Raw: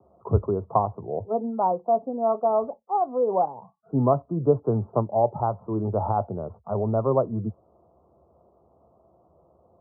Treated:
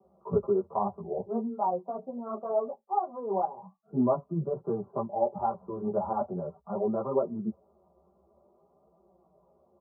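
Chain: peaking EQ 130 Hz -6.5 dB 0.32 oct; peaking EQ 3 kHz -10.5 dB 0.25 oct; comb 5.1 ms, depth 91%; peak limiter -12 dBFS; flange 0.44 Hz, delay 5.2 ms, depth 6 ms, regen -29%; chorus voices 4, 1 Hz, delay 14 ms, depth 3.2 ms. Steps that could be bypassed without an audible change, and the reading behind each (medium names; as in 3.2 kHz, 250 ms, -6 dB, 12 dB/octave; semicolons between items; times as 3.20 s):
peaking EQ 3 kHz: input has nothing above 1.4 kHz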